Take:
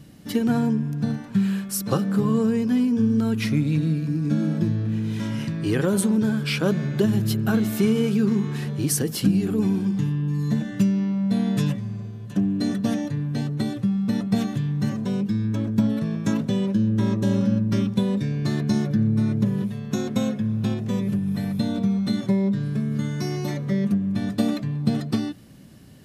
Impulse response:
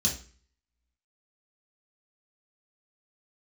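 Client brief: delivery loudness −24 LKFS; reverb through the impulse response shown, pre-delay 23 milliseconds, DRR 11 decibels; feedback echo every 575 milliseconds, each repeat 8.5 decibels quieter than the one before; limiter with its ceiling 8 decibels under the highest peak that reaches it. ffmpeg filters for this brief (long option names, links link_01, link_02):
-filter_complex "[0:a]alimiter=limit=-15dB:level=0:latency=1,aecho=1:1:575|1150|1725|2300:0.376|0.143|0.0543|0.0206,asplit=2[link_01][link_02];[1:a]atrim=start_sample=2205,adelay=23[link_03];[link_02][link_03]afir=irnorm=-1:irlink=0,volume=-17dB[link_04];[link_01][link_04]amix=inputs=2:normalize=0,volume=-3dB"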